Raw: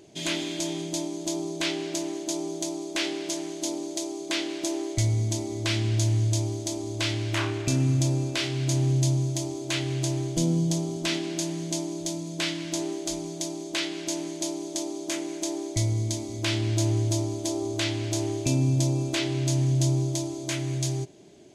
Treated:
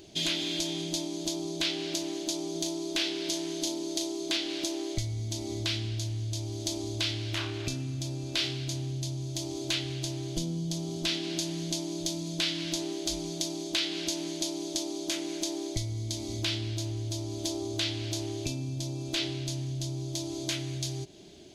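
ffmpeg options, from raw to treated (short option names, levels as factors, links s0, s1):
-filter_complex "[0:a]asettb=1/sr,asplit=3[s0][s1][s2];[s0]atrim=end=2.524[s3];[s1]atrim=start=2.52:end=4.37,asetpts=PTS-STARTPTS,afade=t=in:d=0.004:c=qsin,afade=t=out:st=1.846:d=0.004:c=qsin,asplit=2[s4][s5];[s5]adelay=36,volume=0.531[s6];[s4][s6]amix=inputs=2:normalize=0,atrim=end_sample=81585[s7];[s2]atrim=start=4.366[s8];[s3][s7]acrossfade=d=0.004:c1=hsin:c2=qsin[s9];[s9][s8]acrossfade=d=0.004:c1=qsin:c2=hsin,lowshelf=f=190:g=4,acompressor=threshold=0.0316:ratio=6,equalizer=f=125:t=o:w=1:g=-10,equalizer=f=250:t=o:w=1:g=-6,equalizer=f=500:t=o:w=1:g=-8,equalizer=f=1000:t=o:w=1:g=-7,equalizer=f=2000:t=o:w=1:g=-6,equalizer=f=4000:t=o:w=1:g=4,equalizer=f=8000:t=o:w=1:g=-9,volume=2.51"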